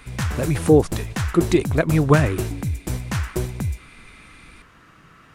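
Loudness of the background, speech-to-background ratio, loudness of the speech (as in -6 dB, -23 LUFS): -27.5 LUFS, 7.5 dB, -20.0 LUFS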